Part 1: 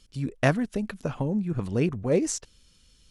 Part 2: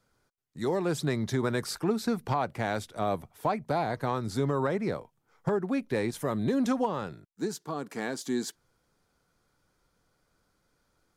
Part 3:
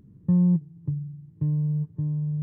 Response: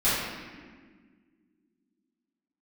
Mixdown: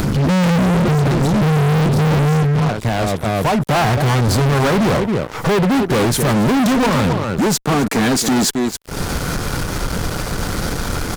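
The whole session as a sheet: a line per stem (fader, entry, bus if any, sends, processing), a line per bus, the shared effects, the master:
−5.5 dB, 0.00 s, no send, no echo send, low-pass filter 4,000 Hz 12 dB per octave
+2.5 dB, 0.00 s, no send, echo send −15.5 dB, upward compression, threshold −46 dBFS; automatic ducking −21 dB, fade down 1.75 s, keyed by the first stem
+2.0 dB, 0.00 s, no send, echo send −12.5 dB, parametric band 400 Hz +10 dB 0.83 octaves; pitch vibrato 3.5 Hz 77 cents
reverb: not used
echo: single-tap delay 266 ms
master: low-shelf EQ 250 Hz +9 dB; upward compression, threshold −29 dBFS; fuzz pedal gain 38 dB, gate −46 dBFS

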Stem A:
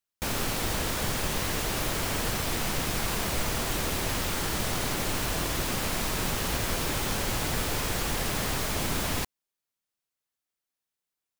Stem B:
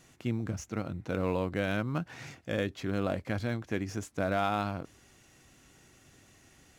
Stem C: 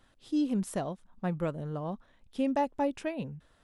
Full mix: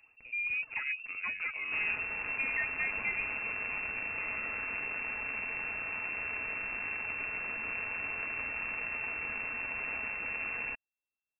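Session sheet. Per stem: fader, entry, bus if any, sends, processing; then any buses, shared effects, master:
−5.0 dB, 1.50 s, no bus, no send, high-pass filter 81 Hz; half-wave rectification
−11.5 dB, 0.00 s, bus A, no send, downward compressor 4 to 1, threshold −41 dBFS, peak gain reduction 14 dB
−11.0 dB, 0.00 s, bus A, no send, phase shifter 1.1 Hz, delay 3.9 ms, feedback 70%
bus A: 0.0 dB, automatic gain control gain up to 8.5 dB; brickwall limiter −27 dBFS, peak gain reduction 11.5 dB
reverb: not used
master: comb filter 4.9 ms, depth 31%; voice inversion scrambler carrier 2,700 Hz

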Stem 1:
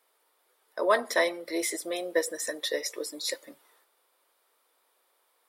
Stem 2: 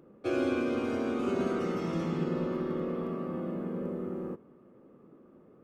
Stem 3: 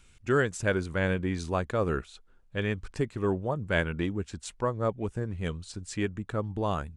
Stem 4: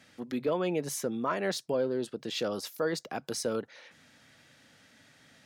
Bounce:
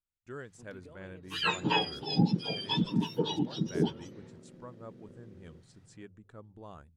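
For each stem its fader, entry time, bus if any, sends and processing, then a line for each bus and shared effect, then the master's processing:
−1.0 dB, 0.55 s, no send, frequency axis turned over on the octave scale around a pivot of 1,300 Hz
−18.0 dB, 1.25 s, no send, adaptive Wiener filter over 41 samples
−18.5 dB, 0.00 s, no send, mains-hum notches 50/100 Hz; noise gate with hold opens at −45 dBFS; parametric band 2,600 Hz −3.5 dB
−16.5 dB, 0.40 s, no send, downward compressor, threshold −35 dBFS, peak gain reduction 10 dB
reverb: not used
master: no processing

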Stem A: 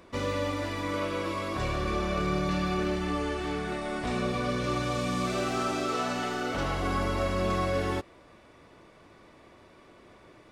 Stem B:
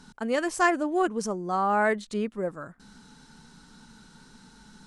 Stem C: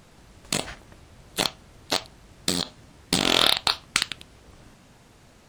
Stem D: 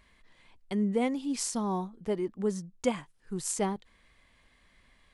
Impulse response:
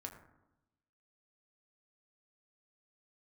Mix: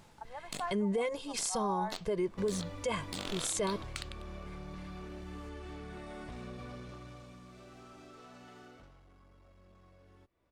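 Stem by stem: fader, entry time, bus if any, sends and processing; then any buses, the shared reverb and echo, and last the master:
0:06.73 −6.5 dB → 0:07.43 −15 dB → 0:08.64 −15 dB → 0:09.03 −22.5 dB, 2.25 s, no send, low-shelf EQ 120 Hz +11.5 dB; downward compressor 6 to 1, threshold −35 dBFS, peak gain reduction 14 dB; asymmetric clip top −35 dBFS
−7.0 dB, 0.00 s, no send, four-pole ladder band-pass 890 Hz, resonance 80%
−5.5 dB, 0.00 s, no send, automatic ducking −11 dB, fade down 0.55 s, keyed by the fourth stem
+2.0 dB, 0.00 s, no send, comb filter 1.9 ms, depth 96%; noise gate with hold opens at −46 dBFS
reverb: not used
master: brickwall limiter −24.5 dBFS, peak gain reduction 15.5 dB

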